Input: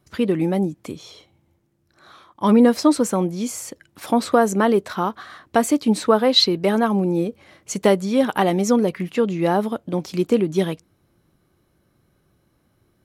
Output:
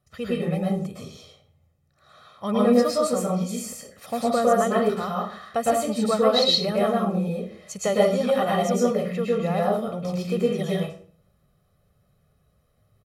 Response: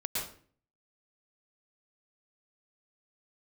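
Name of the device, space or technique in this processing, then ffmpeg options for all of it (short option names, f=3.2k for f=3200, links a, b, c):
microphone above a desk: -filter_complex "[0:a]aecho=1:1:1.6:0.78[a];[1:a]atrim=start_sample=2205[b];[a][b]afir=irnorm=-1:irlink=0,volume=-9dB"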